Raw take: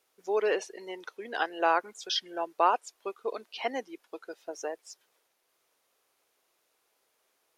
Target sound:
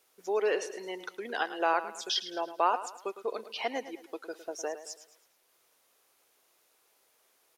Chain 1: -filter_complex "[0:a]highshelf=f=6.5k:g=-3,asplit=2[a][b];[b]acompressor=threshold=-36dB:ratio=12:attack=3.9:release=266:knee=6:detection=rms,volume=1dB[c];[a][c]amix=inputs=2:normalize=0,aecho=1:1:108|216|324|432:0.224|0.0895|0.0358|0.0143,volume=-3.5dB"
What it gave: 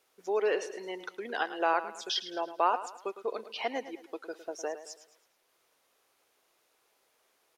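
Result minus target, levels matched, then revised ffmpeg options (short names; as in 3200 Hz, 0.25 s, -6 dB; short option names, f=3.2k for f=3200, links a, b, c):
8000 Hz band -3.0 dB
-filter_complex "[0:a]highshelf=f=6.5k:g=4.5,asplit=2[a][b];[b]acompressor=threshold=-36dB:ratio=12:attack=3.9:release=266:knee=6:detection=rms,volume=1dB[c];[a][c]amix=inputs=2:normalize=0,aecho=1:1:108|216|324|432:0.224|0.0895|0.0358|0.0143,volume=-3.5dB"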